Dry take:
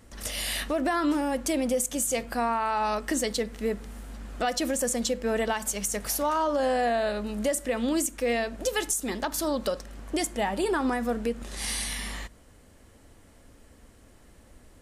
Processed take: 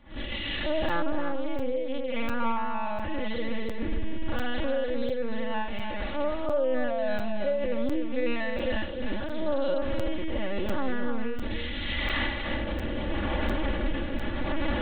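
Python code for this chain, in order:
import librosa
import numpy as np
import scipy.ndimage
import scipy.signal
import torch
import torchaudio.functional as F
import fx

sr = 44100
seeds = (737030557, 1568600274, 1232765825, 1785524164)

y = fx.spec_blur(x, sr, span_ms=135.0)
y = fx.recorder_agc(y, sr, target_db=-19.5, rise_db_per_s=59.0, max_gain_db=30)
y = fx.peak_eq(y, sr, hz=280.0, db=-4.5, octaves=0.68)
y = fx.rotary(y, sr, hz=0.8)
y = fx.low_shelf(y, sr, hz=60.0, db=-4.0)
y = fx.lpc_vocoder(y, sr, seeds[0], excitation='pitch_kept', order=8)
y = y + 0.87 * np.pad(y, (int(3.5 * sr / 1000.0), 0))[:len(y)]
y = y + 10.0 ** (-6.5 / 20.0) * np.pad(y, (int(299 * sr / 1000.0), 0))[:len(y)]
y = fx.buffer_crackle(y, sr, first_s=0.89, period_s=0.7, block=256, kind='zero')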